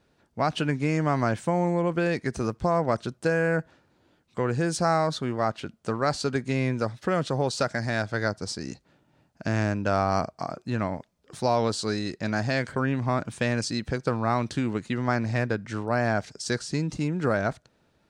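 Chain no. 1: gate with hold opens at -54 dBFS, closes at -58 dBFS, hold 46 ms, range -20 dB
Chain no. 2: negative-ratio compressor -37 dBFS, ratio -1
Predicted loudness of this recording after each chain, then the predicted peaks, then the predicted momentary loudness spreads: -27.5, -35.5 LUFS; -10.0, -13.5 dBFS; 7, 9 LU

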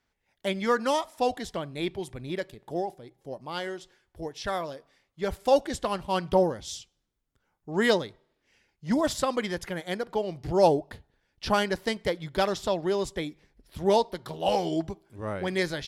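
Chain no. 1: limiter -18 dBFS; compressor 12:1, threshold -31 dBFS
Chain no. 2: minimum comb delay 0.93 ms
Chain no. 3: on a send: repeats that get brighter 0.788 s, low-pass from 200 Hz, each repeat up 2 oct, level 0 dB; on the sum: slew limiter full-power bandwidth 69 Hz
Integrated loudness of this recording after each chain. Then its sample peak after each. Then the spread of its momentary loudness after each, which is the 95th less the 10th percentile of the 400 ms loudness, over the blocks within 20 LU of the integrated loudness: -37.5, -31.0, -28.0 LUFS; -20.5, -12.0, -10.0 dBFS; 7, 14, 8 LU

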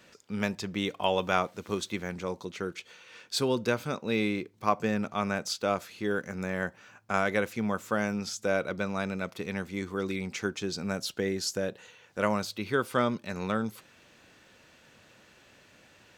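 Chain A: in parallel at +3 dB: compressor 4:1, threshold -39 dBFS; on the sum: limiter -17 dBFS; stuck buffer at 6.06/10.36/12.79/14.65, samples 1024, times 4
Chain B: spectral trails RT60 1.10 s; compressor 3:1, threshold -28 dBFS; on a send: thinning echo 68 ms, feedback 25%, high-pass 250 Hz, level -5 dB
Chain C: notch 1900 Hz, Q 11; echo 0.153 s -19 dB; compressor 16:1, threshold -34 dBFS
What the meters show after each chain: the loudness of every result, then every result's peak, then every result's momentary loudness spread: -30.5, -31.0, -40.0 LUFS; -17.0, -13.0, -20.0 dBFS; 21, 5, 19 LU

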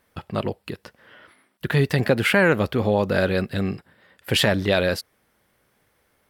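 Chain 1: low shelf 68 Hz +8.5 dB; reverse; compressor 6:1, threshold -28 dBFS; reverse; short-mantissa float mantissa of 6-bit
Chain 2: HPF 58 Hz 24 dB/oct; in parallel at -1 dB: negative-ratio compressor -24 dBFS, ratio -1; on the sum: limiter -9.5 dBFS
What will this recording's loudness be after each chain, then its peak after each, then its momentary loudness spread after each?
-32.5, -22.0 LUFS; -18.5, -9.5 dBFS; 16, 12 LU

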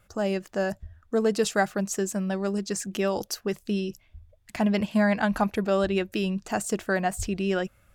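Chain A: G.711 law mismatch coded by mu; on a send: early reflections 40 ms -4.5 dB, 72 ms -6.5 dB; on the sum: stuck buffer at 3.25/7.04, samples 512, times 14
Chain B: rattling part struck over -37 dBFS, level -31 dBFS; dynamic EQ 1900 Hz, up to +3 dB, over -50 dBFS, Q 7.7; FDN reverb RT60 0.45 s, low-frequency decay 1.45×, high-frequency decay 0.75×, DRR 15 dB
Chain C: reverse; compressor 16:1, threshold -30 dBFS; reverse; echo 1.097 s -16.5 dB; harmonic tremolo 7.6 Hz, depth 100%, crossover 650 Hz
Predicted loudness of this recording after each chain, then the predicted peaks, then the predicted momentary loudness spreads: -24.5, -27.0, -40.0 LUFS; -8.5, -10.0, -23.0 dBFS; 7, 7, 5 LU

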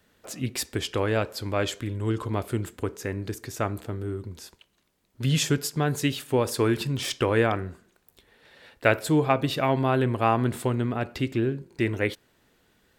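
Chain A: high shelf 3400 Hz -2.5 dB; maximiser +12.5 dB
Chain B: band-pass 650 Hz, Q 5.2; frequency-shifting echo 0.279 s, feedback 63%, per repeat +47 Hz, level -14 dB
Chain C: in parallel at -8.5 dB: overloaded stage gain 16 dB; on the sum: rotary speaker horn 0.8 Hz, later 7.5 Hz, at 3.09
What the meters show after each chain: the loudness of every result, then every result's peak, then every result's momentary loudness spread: -15.5, -36.0, -26.0 LUFS; -1.0, -15.0, -5.0 dBFS; 9, 21, 10 LU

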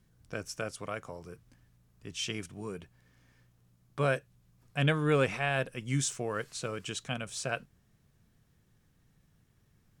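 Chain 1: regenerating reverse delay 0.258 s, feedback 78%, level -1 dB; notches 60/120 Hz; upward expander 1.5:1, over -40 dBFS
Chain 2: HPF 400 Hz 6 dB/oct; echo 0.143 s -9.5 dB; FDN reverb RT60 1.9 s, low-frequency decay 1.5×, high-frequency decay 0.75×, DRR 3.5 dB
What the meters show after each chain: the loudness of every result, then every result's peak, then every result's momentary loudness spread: -32.0, -33.5 LUFS; -13.0, -13.5 dBFS; 23, 20 LU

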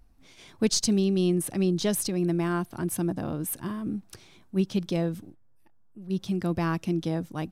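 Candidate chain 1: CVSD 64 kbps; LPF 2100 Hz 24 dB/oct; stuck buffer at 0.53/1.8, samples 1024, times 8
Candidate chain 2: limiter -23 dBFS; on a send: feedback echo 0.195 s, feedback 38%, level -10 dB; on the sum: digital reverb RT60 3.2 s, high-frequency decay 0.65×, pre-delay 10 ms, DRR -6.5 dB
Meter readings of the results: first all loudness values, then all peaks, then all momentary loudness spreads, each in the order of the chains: -29.0, -25.0 LUFS; -15.5, -8.5 dBFS; 9, 10 LU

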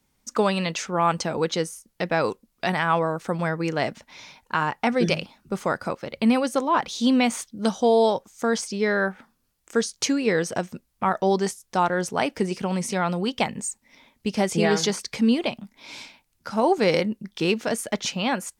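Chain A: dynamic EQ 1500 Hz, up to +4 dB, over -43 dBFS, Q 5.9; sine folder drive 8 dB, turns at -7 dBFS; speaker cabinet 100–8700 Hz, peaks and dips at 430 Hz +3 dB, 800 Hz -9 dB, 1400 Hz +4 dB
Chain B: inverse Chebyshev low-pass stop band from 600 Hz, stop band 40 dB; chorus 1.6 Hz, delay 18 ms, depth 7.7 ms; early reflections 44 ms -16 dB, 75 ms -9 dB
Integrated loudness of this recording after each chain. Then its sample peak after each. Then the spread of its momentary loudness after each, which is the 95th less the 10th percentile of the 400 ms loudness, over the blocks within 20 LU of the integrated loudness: -14.5, -32.5 LUFS; -1.5, -13.0 dBFS; 10, 12 LU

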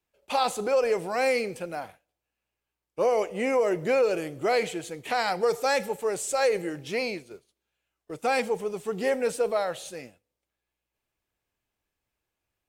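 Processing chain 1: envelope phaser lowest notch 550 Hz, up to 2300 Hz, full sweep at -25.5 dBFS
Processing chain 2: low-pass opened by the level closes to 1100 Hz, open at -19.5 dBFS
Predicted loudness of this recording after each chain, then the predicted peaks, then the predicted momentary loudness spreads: -28.5, -27.0 LUFS; -14.5, -11.0 dBFS; 13, 12 LU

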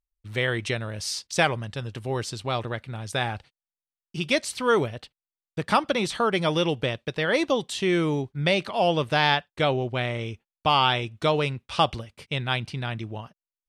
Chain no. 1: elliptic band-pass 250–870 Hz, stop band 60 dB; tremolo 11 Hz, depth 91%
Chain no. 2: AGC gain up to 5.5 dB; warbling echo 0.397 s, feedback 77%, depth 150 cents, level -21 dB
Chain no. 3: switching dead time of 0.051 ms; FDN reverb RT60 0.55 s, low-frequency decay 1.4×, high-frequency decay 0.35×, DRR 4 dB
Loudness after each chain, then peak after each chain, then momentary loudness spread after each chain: -33.0, -21.0, -24.0 LUFS; -11.5, -2.0, -3.0 dBFS; 15, 12, 11 LU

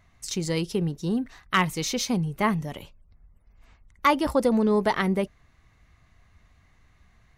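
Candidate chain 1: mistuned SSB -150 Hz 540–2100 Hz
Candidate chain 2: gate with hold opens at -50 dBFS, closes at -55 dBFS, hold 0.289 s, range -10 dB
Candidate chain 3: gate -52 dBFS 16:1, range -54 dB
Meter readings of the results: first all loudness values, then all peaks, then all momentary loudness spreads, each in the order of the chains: -29.5, -25.5, -25.5 LUFS; -10.0, -10.0, -10.0 dBFS; 20, 9, 9 LU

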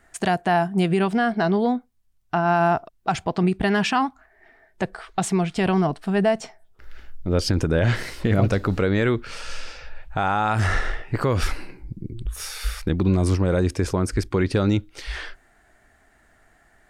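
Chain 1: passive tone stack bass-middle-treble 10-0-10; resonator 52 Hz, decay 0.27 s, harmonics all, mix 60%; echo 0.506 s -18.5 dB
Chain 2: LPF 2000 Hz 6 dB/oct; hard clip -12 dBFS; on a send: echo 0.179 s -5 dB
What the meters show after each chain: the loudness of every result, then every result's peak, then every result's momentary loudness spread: -37.5, -22.5 LUFS; -18.5, -8.0 dBFS; 13, 14 LU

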